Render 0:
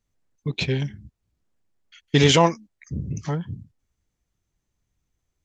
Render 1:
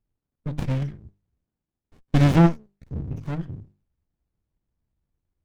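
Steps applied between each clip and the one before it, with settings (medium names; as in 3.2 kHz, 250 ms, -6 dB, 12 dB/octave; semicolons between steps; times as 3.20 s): treble shelf 5.8 kHz -9 dB; hum notches 50/100/150/200 Hz; sliding maximum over 65 samples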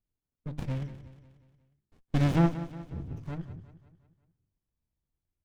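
feedback delay 180 ms, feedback 51%, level -14 dB; trim -8 dB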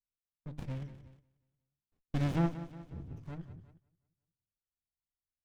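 gate -52 dBFS, range -12 dB; trim -6.5 dB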